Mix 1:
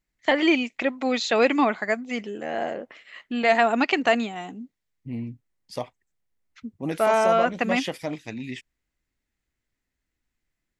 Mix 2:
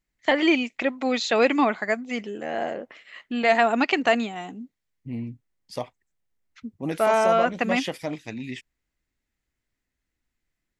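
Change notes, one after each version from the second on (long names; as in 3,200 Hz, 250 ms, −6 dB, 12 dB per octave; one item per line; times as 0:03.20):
nothing changed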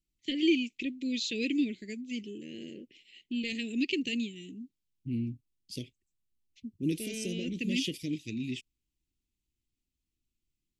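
first voice −4.5 dB
master: add elliptic band-stop filter 360–2,700 Hz, stop band 50 dB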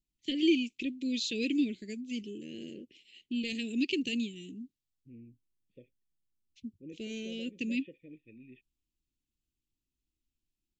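second voice: add formant resonators in series e
master: add parametric band 2,000 Hz −6.5 dB 0.39 octaves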